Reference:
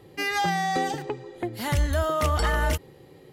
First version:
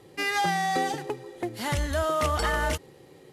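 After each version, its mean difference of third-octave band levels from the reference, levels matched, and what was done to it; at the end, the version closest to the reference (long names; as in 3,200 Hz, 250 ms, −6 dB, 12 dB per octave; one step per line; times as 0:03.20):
1.5 dB: variable-slope delta modulation 64 kbit/s
low-shelf EQ 140 Hz −7 dB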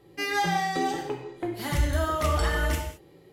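3.5 dB: in parallel at −6 dB: dead-zone distortion −43 dBFS
on the sum: reverb whose tail is shaped and stops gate 240 ms falling, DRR 0.5 dB
level −7 dB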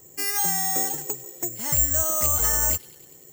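10.5 dB: delay with a high-pass on its return 98 ms, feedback 67%, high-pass 4,700 Hz, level −5.5 dB
bad sample-rate conversion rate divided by 6×, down filtered, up zero stuff
level −6.5 dB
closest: first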